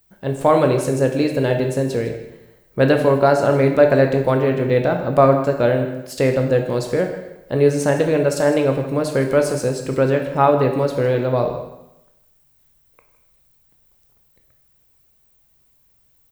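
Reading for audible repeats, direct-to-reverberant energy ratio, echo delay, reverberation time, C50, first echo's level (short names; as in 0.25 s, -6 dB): 1, 3.5 dB, 0.158 s, 0.90 s, 6.5 dB, -15.0 dB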